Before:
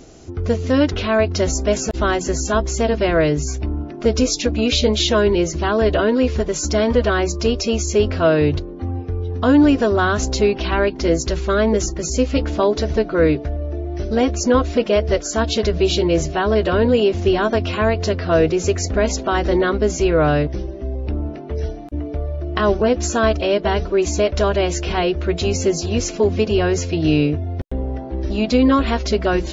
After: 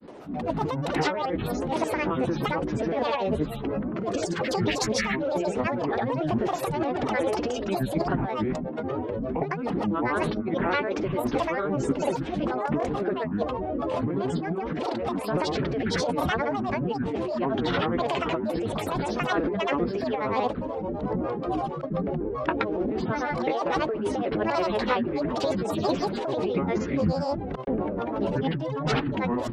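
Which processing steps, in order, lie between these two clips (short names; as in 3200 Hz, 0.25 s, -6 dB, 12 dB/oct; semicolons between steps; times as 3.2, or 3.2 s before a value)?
three-band isolator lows -22 dB, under 180 Hz, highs -23 dB, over 2700 Hz; negative-ratio compressor -23 dBFS, ratio -1; grains 0.1 s, grains 27/s, pitch spread up and down by 12 st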